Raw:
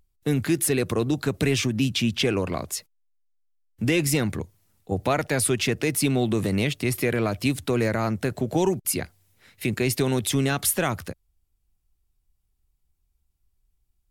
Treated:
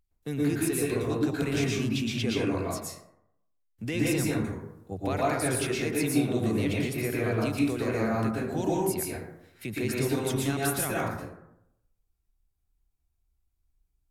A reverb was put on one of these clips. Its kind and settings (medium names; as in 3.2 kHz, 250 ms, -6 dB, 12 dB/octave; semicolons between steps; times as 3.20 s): plate-style reverb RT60 0.8 s, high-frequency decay 0.4×, pre-delay 105 ms, DRR -5.5 dB; trim -10.5 dB